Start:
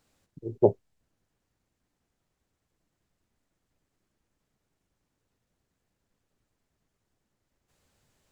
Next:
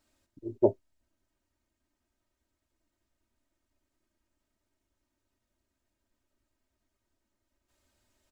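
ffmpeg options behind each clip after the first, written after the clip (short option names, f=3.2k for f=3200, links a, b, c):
-af "aecho=1:1:3.2:0.85,volume=-5dB"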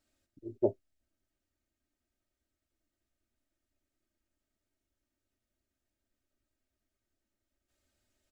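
-af "equalizer=f=980:w=7:g=-13,volume=-5dB"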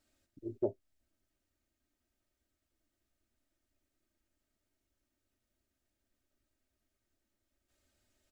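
-af "acompressor=threshold=-36dB:ratio=2,volume=2dB"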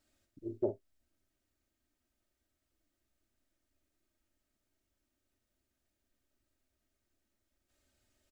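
-filter_complex "[0:a]asplit=2[a][b];[b]adelay=47,volume=-10dB[c];[a][c]amix=inputs=2:normalize=0"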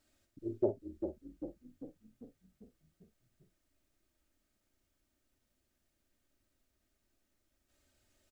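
-filter_complex "[0:a]asplit=8[a][b][c][d][e][f][g][h];[b]adelay=396,afreqshift=-31,volume=-7.5dB[i];[c]adelay=792,afreqshift=-62,volume=-12.5dB[j];[d]adelay=1188,afreqshift=-93,volume=-17.6dB[k];[e]adelay=1584,afreqshift=-124,volume=-22.6dB[l];[f]adelay=1980,afreqshift=-155,volume=-27.6dB[m];[g]adelay=2376,afreqshift=-186,volume=-32.7dB[n];[h]adelay=2772,afreqshift=-217,volume=-37.7dB[o];[a][i][j][k][l][m][n][o]amix=inputs=8:normalize=0,volume=2dB"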